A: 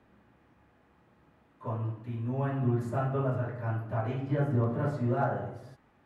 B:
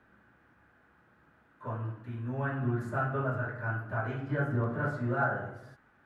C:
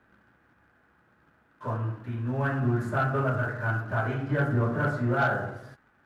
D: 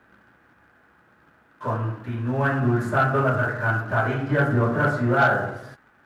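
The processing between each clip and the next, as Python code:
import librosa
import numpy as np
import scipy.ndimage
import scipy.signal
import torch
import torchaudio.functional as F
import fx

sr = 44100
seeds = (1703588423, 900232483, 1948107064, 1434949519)

y1 = fx.peak_eq(x, sr, hz=1500.0, db=13.5, octaves=0.46)
y1 = F.gain(torch.from_numpy(y1), -3.0).numpy()
y2 = fx.leveller(y1, sr, passes=1)
y2 = F.gain(torch.from_numpy(y2), 2.0).numpy()
y3 = fx.low_shelf(y2, sr, hz=190.0, db=-5.0)
y3 = F.gain(torch.from_numpy(y3), 7.0).numpy()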